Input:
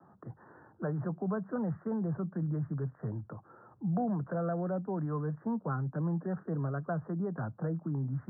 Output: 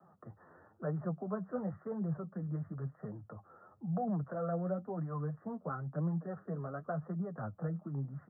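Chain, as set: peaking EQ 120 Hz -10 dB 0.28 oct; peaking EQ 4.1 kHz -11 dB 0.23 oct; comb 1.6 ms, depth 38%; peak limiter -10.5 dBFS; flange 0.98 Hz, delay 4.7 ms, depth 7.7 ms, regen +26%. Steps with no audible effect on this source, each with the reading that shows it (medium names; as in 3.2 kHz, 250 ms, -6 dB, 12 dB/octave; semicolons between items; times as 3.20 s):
peaking EQ 4.1 kHz: input has nothing above 1.6 kHz; peak limiter -10.5 dBFS: peak at its input -22.0 dBFS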